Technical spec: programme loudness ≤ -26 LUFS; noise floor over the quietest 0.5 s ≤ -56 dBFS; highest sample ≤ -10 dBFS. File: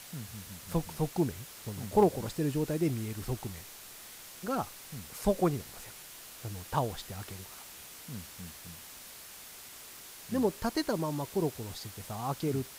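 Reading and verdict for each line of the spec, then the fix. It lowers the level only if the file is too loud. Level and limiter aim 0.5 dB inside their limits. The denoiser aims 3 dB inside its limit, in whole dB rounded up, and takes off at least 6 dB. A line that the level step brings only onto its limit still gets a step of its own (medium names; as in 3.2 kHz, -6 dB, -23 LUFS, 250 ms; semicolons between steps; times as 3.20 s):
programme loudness -34.0 LUFS: pass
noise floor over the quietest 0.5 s -49 dBFS: fail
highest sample -13.0 dBFS: pass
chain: noise reduction 10 dB, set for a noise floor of -49 dBFS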